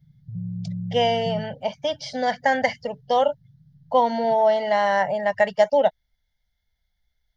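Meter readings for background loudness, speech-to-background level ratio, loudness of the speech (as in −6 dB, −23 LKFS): −33.0 LKFS, 10.5 dB, −22.5 LKFS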